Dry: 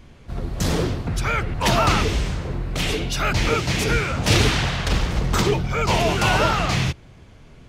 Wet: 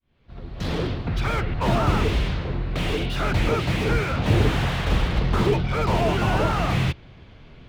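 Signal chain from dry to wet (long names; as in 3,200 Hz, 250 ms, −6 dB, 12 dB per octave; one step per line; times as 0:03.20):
fade in at the beginning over 1.23 s
high shelf with overshoot 5,500 Hz −13.5 dB, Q 1.5
slew-rate limiting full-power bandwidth 79 Hz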